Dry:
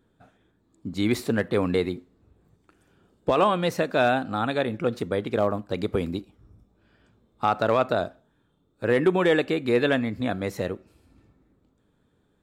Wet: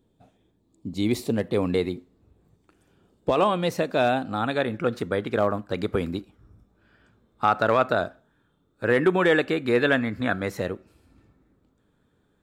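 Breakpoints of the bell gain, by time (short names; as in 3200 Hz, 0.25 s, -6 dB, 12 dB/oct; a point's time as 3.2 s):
bell 1500 Hz 0.76 oct
1.3 s -13 dB
1.78 s -3.5 dB
4.24 s -3.5 dB
4.73 s +5.5 dB
9.92 s +5.5 dB
10.23 s +13 dB
10.64 s +2.5 dB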